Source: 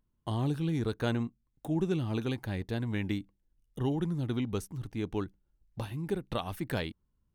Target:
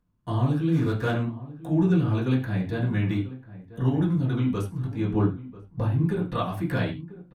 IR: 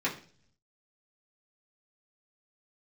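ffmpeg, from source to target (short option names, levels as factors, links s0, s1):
-filter_complex "[0:a]asettb=1/sr,asplit=3[s0][s1][s2];[s0]atrim=end=0.724[s3];[s1]atrim=start=0.72:end=1.14,asetpts=PTS-STARTPTS,afade=t=in:d=0.004:c=qsin,afade=t=out:st=0.416:d=0.004:c=qsin,aeval=exprs='val(0)*gte(abs(val(0)),0.01)':c=same[s4];[s2]atrim=start=1.136[s5];[s3][s4]acrossfade=d=0.004:c1=hsin:c2=qsin[s6];[s6][s5]acrossfade=d=0.004:c1=qsin:c2=hsin,asettb=1/sr,asplit=3[s7][s8][s9];[s7]atrim=end=5.104[s10];[s8]atrim=start=5.1:end=6.03,asetpts=PTS-STARTPTS,afade=t=in:d=0.004:c=qsin,afade=t=out:st=0.926:d=0.004:c=qsin,tiltshelf=f=1300:g=6[s11];[s9]atrim=start=6.026[s12];[s10][s11]acrossfade=d=0.004:c1=hsin:c2=qsin[s13];[s13][s12]acrossfade=d=0.004:c1=qsin:c2=hsin,asplit=2[s14][s15];[s15]adelay=991.3,volume=0.158,highshelf=f=4000:g=-22.3[s16];[s14][s16]amix=inputs=2:normalize=0[s17];[1:a]atrim=start_sample=2205,atrim=end_sample=3528,asetrate=28224,aresample=44100[s18];[s17][s18]afir=irnorm=-1:irlink=0,volume=0.562"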